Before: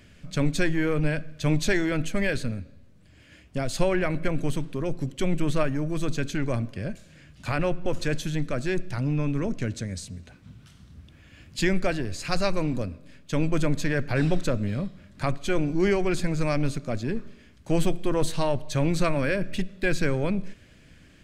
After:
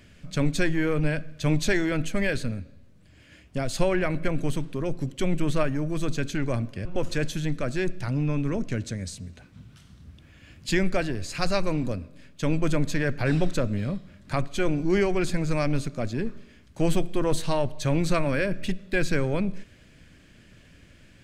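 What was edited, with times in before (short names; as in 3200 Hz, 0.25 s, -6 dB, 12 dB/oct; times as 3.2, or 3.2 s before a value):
6.85–7.75 cut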